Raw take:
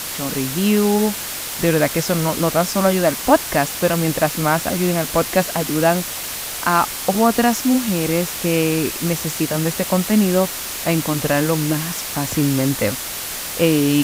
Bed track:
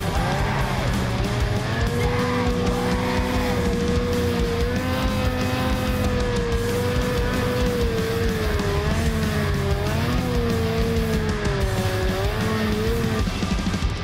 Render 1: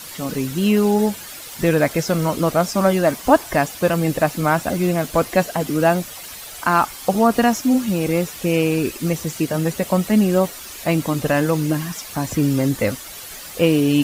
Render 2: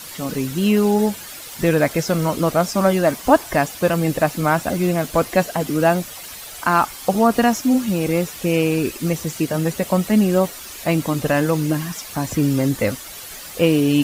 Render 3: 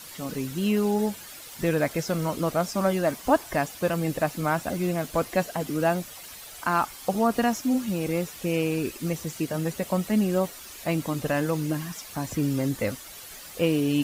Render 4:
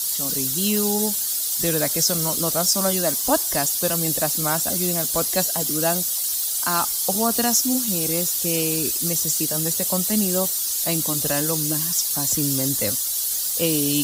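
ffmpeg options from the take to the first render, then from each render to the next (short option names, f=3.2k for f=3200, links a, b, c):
-af "afftdn=nr=11:nf=-28"
-af anull
-af "volume=-7.5dB"
-filter_complex "[0:a]acrossover=split=120|730|7500[a][b][c][d];[a]aeval=exprs='val(0)*gte(abs(val(0)),0.00119)':c=same[e];[e][b][c][d]amix=inputs=4:normalize=0,aexciter=amount=5.3:drive=7.6:freq=3.5k"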